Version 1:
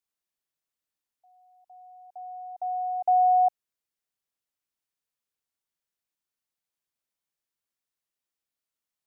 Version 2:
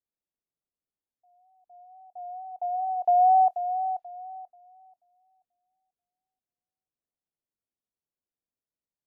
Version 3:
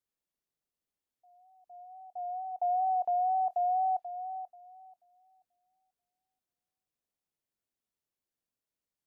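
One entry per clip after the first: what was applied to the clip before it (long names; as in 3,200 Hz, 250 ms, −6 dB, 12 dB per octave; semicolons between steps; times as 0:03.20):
tape wow and flutter 54 cents; feedback echo with a high-pass in the loop 485 ms, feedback 34%, high-pass 610 Hz, level −7.5 dB; low-pass that shuts in the quiet parts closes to 580 Hz, open at −25.5 dBFS; level +1 dB
brickwall limiter −26.5 dBFS, peak gain reduction 12 dB; level +1.5 dB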